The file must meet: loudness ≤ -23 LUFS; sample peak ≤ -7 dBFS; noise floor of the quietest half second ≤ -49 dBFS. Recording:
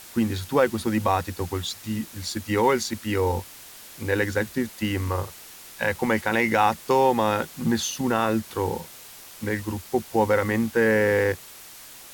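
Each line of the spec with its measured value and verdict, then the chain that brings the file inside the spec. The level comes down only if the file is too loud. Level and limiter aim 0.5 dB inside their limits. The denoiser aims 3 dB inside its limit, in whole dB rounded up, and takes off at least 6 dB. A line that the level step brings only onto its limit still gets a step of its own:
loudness -24.5 LUFS: pass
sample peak -8.0 dBFS: pass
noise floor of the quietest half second -44 dBFS: fail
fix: noise reduction 8 dB, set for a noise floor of -44 dBFS

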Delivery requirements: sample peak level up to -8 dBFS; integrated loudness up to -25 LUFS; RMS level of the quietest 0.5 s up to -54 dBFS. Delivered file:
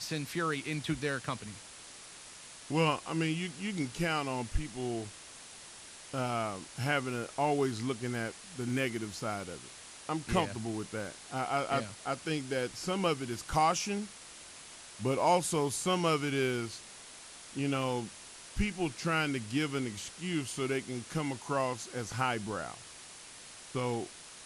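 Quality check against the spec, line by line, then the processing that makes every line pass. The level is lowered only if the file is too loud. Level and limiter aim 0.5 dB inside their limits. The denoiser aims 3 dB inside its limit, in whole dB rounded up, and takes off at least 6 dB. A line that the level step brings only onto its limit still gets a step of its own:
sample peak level -14.5 dBFS: pass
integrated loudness -34.0 LUFS: pass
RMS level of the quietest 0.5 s -50 dBFS: fail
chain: noise reduction 7 dB, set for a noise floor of -50 dBFS

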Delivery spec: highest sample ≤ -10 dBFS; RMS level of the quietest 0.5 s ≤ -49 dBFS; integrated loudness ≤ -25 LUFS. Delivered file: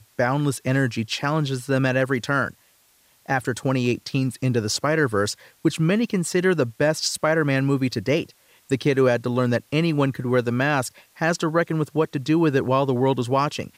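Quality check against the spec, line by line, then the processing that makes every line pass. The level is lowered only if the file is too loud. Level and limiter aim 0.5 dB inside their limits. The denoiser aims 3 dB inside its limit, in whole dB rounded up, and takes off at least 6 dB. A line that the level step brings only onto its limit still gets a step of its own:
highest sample -8.0 dBFS: fail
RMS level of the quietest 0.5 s -60 dBFS: pass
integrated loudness -22.5 LUFS: fail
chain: trim -3 dB

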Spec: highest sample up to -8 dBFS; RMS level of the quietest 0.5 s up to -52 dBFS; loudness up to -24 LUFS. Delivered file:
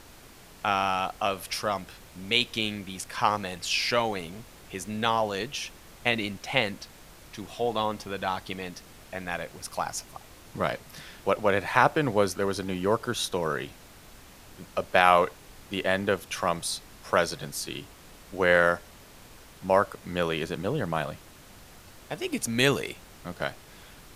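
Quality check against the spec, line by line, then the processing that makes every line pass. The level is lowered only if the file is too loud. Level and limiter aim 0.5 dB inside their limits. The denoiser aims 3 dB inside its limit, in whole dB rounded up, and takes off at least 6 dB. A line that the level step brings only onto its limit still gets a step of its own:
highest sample -3.5 dBFS: fail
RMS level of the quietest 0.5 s -50 dBFS: fail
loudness -28.0 LUFS: pass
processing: noise reduction 6 dB, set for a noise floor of -50 dBFS; peak limiter -8.5 dBFS

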